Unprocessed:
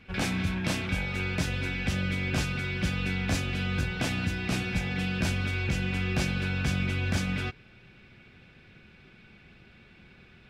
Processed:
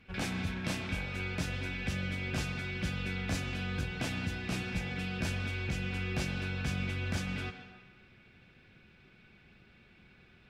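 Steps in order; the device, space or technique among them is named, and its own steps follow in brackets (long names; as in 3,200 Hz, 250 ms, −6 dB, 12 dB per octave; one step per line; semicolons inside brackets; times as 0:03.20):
filtered reverb send (on a send: high-pass filter 300 Hz 6 dB per octave + low-pass filter 4,500 Hz 12 dB per octave + convolution reverb RT60 1.4 s, pre-delay 101 ms, DRR 8 dB)
on the sum: level −6 dB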